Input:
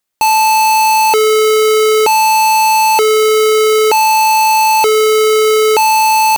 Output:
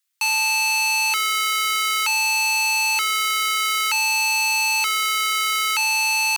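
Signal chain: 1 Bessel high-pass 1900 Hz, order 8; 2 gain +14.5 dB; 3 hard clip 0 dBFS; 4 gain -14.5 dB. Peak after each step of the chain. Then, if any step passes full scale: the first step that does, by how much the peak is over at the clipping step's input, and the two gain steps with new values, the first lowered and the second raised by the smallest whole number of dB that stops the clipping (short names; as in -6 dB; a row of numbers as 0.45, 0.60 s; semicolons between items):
-5.5, +9.0, 0.0, -14.5 dBFS; step 2, 9.0 dB; step 2 +5.5 dB, step 4 -5.5 dB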